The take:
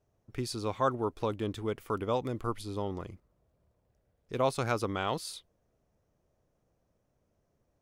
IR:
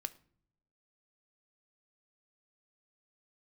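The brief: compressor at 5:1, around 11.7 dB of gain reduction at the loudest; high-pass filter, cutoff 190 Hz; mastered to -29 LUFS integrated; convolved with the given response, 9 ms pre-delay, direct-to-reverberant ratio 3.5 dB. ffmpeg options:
-filter_complex "[0:a]highpass=190,acompressor=threshold=0.0158:ratio=5,asplit=2[s0][s1];[1:a]atrim=start_sample=2205,adelay=9[s2];[s1][s2]afir=irnorm=-1:irlink=0,volume=0.794[s3];[s0][s3]amix=inputs=2:normalize=0,volume=3.55"

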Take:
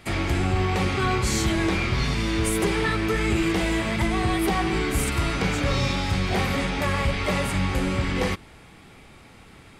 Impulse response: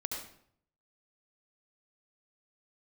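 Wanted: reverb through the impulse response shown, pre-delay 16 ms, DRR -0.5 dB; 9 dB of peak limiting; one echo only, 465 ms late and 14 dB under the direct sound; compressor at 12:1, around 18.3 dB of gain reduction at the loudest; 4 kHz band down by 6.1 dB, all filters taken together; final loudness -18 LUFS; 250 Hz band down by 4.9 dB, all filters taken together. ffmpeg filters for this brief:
-filter_complex "[0:a]equalizer=f=250:t=o:g=-7.5,equalizer=f=4000:t=o:g=-8,acompressor=threshold=0.0112:ratio=12,alimiter=level_in=4.47:limit=0.0631:level=0:latency=1,volume=0.224,aecho=1:1:465:0.2,asplit=2[s0][s1];[1:a]atrim=start_sample=2205,adelay=16[s2];[s1][s2]afir=irnorm=-1:irlink=0,volume=0.891[s3];[s0][s3]amix=inputs=2:normalize=0,volume=16.8"

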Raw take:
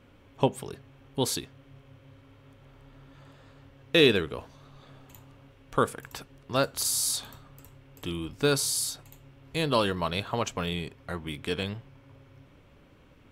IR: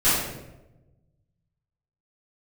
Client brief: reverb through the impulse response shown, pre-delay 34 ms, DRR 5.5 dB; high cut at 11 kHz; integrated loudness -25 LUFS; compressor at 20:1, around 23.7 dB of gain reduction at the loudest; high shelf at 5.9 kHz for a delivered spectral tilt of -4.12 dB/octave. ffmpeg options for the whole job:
-filter_complex "[0:a]lowpass=11000,highshelf=f=5900:g=-4.5,acompressor=threshold=0.0112:ratio=20,asplit=2[s0][s1];[1:a]atrim=start_sample=2205,adelay=34[s2];[s1][s2]afir=irnorm=-1:irlink=0,volume=0.0708[s3];[s0][s3]amix=inputs=2:normalize=0,volume=10"

